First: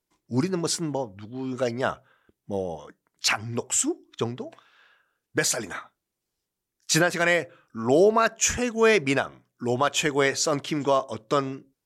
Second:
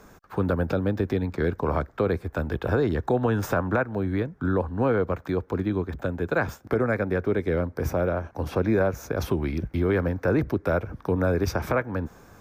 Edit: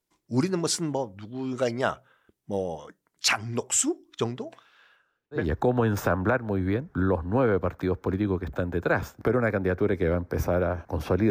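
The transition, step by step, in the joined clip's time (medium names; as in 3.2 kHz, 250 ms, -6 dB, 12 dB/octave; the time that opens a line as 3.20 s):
first
4.96–5.49 s: low-pass 10 kHz -> 1.1 kHz
5.40 s: go over to second from 2.86 s, crossfade 0.18 s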